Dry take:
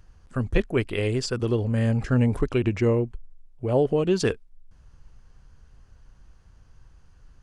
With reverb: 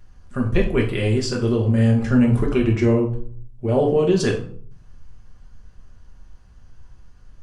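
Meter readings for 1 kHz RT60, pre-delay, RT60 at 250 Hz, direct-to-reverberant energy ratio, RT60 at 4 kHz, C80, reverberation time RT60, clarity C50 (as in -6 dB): 0.50 s, 5 ms, 0.75 s, -0.5 dB, 0.35 s, 12.0 dB, 0.55 s, 8.5 dB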